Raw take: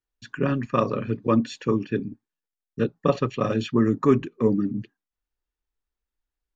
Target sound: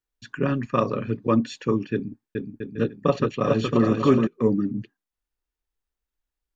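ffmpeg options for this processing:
ffmpeg -i in.wav -filter_complex "[0:a]asettb=1/sr,asplit=3[link_01][link_02][link_03];[link_01]atrim=end=1.934[link_04];[link_02]atrim=start=1.93:end=4.27,asetpts=PTS-STARTPTS,afade=type=in:duration=0.004:curve=qsin,afade=type=out:start_time=2.336:duration=0.004:curve=qsin,aecho=1:1:420|672|823.2|913.9|968.4:0.631|0.398|0.251|0.158|0.1,atrim=end_sample=103194[link_05];[link_03]atrim=start=4.266[link_06];[link_04][link_05]acrossfade=duration=0.004:curve1=hsin:curve2=qsin[link_07];[link_07][link_06]acrossfade=duration=0.004:curve1=qsin:curve2=hsin" out.wav

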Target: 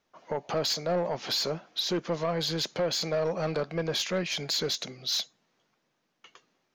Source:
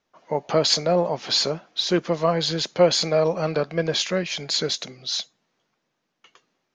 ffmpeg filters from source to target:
ffmpeg -i in.wav -af "alimiter=limit=-16dB:level=0:latency=1:release=465,asoftclip=type=tanh:threshold=-21.5dB" out.wav

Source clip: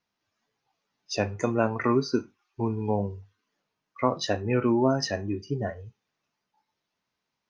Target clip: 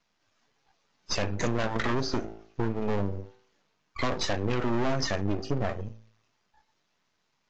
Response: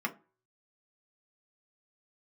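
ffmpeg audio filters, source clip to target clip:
-filter_complex "[0:a]bandreject=frequency=54.91:width_type=h:width=4,bandreject=frequency=109.82:width_type=h:width=4,bandreject=frequency=164.73:width_type=h:width=4,bandreject=frequency=219.64:width_type=h:width=4,bandreject=frequency=274.55:width_type=h:width=4,bandreject=frequency=329.46:width_type=h:width=4,bandreject=frequency=384.37:width_type=h:width=4,bandreject=frequency=439.28:width_type=h:width=4,bandreject=frequency=494.19:width_type=h:width=4,asplit=2[link_01][link_02];[link_02]aeval=exprs='0.316*sin(PI/2*3.55*val(0)/0.316)':channel_layout=same,volume=-6dB[link_03];[link_01][link_03]amix=inputs=2:normalize=0,acompressor=threshold=-23dB:ratio=3,aeval=exprs='max(val(0),0)':channel_layout=same" -ar 16000 -c:a aac -b:a 48k

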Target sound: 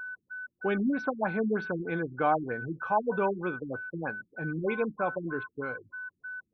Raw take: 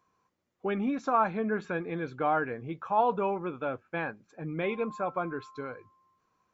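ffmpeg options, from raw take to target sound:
ffmpeg -i in.wav -af "aeval=exprs='val(0)+0.0126*sin(2*PI*1500*n/s)':channel_layout=same,afftfilt=real='re*lt(b*sr/1024,340*pow(6200/340,0.5+0.5*sin(2*PI*3.2*pts/sr)))':imag='im*lt(b*sr/1024,340*pow(6200/340,0.5+0.5*sin(2*PI*3.2*pts/sr)))':win_size=1024:overlap=0.75,volume=2dB" out.wav

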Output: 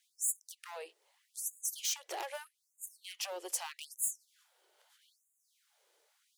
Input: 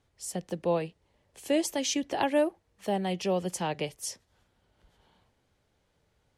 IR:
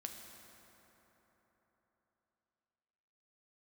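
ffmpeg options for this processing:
-af "acompressor=threshold=-34dB:ratio=8,asoftclip=type=hard:threshold=-36dB,crystalizer=i=2:c=0,atempo=1,afftfilt=real='re*gte(b*sr/1024,310*pow(6700/310,0.5+0.5*sin(2*PI*0.8*pts/sr)))':imag='im*gte(b*sr/1024,310*pow(6700/310,0.5+0.5*sin(2*PI*0.8*pts/sr)))':win_size=1024:overlap=0.75"

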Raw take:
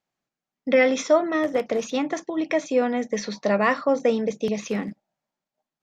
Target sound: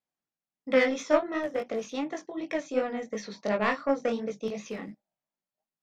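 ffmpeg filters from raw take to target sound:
ffmpeg -i in.wav -af "aeval=exprs='0.422*(cos(1*acos(clip(val(0)/0.422,-1,1)))-cos(1*PI/2))+0.0668*(cos(3*acos(clip(val(0)/0.422,-1,1)))-cos(3*PI/2))+0.00299*(cos(7*acos(clip(val(0)/0.422,-1,1)))-cos(7*PI/2))':channel_layout=same,flanger=delay=18:depth=4.6:speed=2.8" out.wav

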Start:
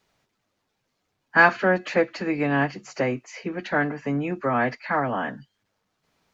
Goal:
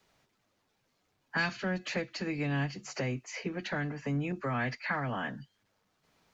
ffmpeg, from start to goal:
ffmpeg -i in.wav -filter_complex "[0:a]acrossover=split=170|3000[link_01][link_02][link_03];[link_02]acompressor=threshold=-36dB:ratio=5[link_04];[link_01][link_04][link_03]amix=inputs=3:normalize=0,asettb=1/sr,asplit=3[link_05][link_06][link_07];[link_05]atrim=end=4.324[link_08];[link_06]atrim=start=4.32:end=5.28,asetpts=PTS-STARTPTS,afade=type=in:duration=0.004:curve=qsin,afade=type=out:start_time=0.956:duration=0.004:curve=qsin,adynamicequalizer=threshold=0.00631:dfrequency=1800:dqfactor=0.81:tfrequency=1800:tqfactor=0.81:attack=5:release=100:ratio=0.375:range=2:mode=boostabove:tftype=bell[link_09];[link_07]atrim=start=5.276[link_10];[link_08][link_09]acrossfade=duration=0.004:curve1=hsin:curve2=qsin[link_11];[link_11][link_10]acrossfade=duration=0.004:curve1=qsin:curve2=hsin" out.wav

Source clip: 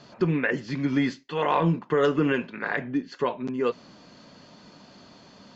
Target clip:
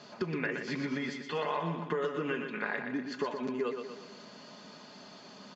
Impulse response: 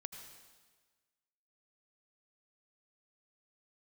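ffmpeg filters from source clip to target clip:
-filter_complex "[0:a]highpass=frequency=280:poles=1,aecho=1:1:4.8:0.35,acompressor=threshold=-31dB:ratio=6,asplit=2[link_01][link_02];[link_02]aecho=0:1:121|242|363|484|605|726:0.473|0.241|0.123|0.0628|0.032|0.0163[link_03];[link_01][link_03]amix=inputs=2:normalize=0"

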